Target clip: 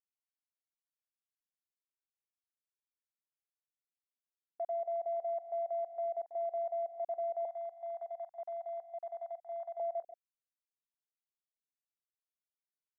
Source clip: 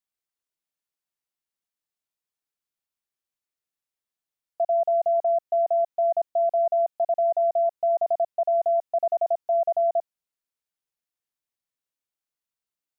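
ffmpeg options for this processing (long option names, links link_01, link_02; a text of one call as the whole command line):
ffmpeg -i in.wav -filter_complex "[0:a]aecho=1:1:139:0.15,alimiter=limit=-23dB:level=0:latency=1:release=134,afwtdn=0.02,asettb=1/sr,asplit=3[link_01][link_02][link_03];[link_01]atrim=end=7.454[link_04];[link_02]atrim=start=7.45:end=9.8,asetpts=PTS-STARTPTS,afade=type=in:duration=0.004:curve=qsin,afade=type=out:start_time=2.346:duration=0.004:curve=qsin,highpass=frequency=750:width=0.5412,highpass=frequency=750:width=1.3066[link_05];[link_03]atrim=start=9.796[link_06];[link_04][link_05]acrossfade=duration=0.004:curve1=hsin:curve2=qsin[link_07];[link_07][link_06]acrossfade=duration=0.004:curve1=qsin:curve2=hsin,volume=-8.5dB" out.wav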